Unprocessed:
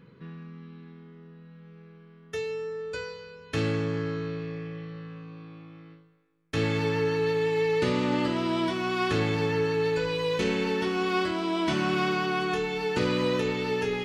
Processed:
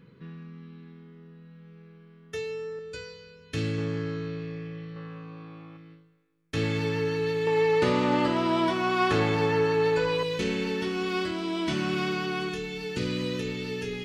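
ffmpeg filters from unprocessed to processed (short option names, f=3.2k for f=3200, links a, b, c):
-af "asetnsamples=n=441:p=0,asendcmd='2.79 equalizer g -11;3.78 equalizer g -4.5;4.96 equalizer g 5;5.77 equalizer g -4.5;7.47 equalizer g 5.5;10.23 equalizer g -6;12.49 equalizer g -14',equalizer=f=880:t=o:w=1.8:g=-3.5"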